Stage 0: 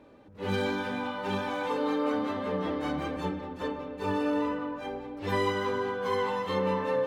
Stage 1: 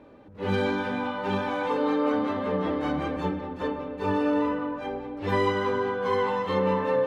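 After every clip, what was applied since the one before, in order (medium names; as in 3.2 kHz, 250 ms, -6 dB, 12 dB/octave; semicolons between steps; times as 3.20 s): treble shelf 4.9 kHz -11 dB; trim +4 dB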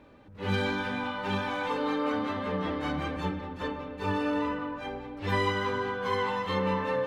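peaking EQ 430 Hz -8.5 dB 2.8 oct; trim +2.5 dB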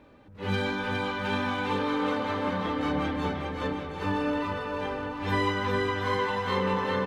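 bouncing-ball echo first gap 410 ms, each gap 0.75×, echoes 5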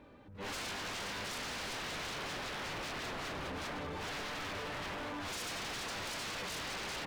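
wavefolder -33.5 dBFS; trim -2.5 dB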